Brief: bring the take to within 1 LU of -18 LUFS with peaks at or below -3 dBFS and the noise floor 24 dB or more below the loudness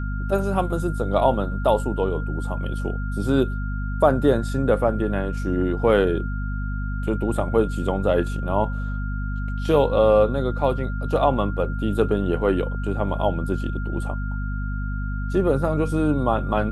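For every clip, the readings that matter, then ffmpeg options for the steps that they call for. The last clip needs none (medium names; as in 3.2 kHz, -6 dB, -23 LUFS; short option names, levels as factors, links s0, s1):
hum 50 Hz; highest harmonic 250 Hz; hum level -24 dBFS; steady tone 1.4 kHz; tone level -36 dBFS; loudness -23.0 LUFS; peak level -4.0 dBFS; loudness target -18.0 LUFS
-> -af "bandreject=f=50:t=h:w=6,bandreject=f=100:t=h:w=6,bandreject=f=150:t=h:w=6,bandreject=f=200:t=h:w=6,bandreject=f=250:t=h:w=6"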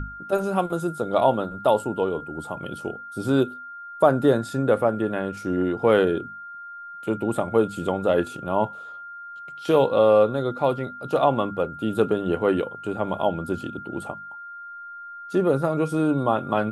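hum not found; steady tone 1.4 kHz; tone level -36 dBFS
-> -af "bandreject=f=1400:w=30"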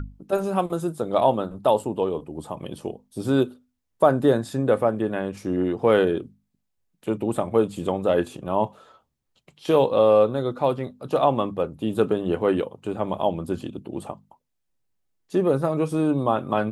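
steady tone not found; loudness -23.5 LUFS; peak level -5.0 dBFS; loudness target -18.0 LUFS
-> -af "volume=1.88,alimiter=limit=0.708:level=0:latency=1"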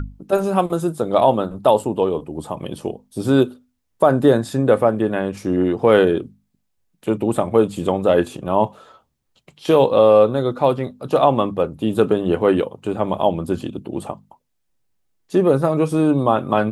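loudness -18.5 LUFS; peak level -3.0 dBFS; noise floor -71 dBFS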